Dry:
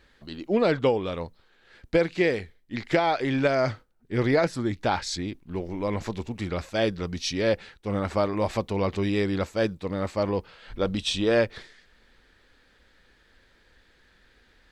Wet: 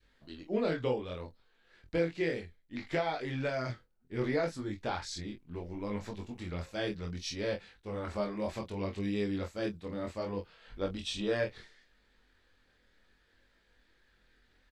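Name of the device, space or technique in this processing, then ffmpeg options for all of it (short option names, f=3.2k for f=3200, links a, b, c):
double-tracked vocal: -filter_complex "[0:a]adynamicequalizer=threshold=0.0158:dfrequency=840:dqfactor=0.89:tfrequency=840:tqfactor=0.89:attack=5:release=100:ratio=0.375:range=2:mode=cutabove:tftype=bell,asplit=2[a][b];[b]adelay=24,volume=-6.5dB[c];[a][c]amix=inputs=2:normalize=0,flanger=delay=19.5:depth=5.1:speed=0.66,volume=-7dB"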